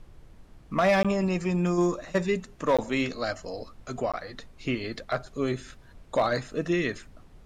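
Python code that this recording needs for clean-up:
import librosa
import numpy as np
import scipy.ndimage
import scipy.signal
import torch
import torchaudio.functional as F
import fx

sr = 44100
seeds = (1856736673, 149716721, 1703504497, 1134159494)

y = fx.fix_declip(x, sr, threshold_db=-16.0)
y = fx.fix_interpolate(y, sr, at_s=(1.03, 2.77, 4.12), length_ms=16.0)
y = fx.noise_reduce(y, sr, print_start_s=0.19, print_end_s=0.69, reduce_db=21.0)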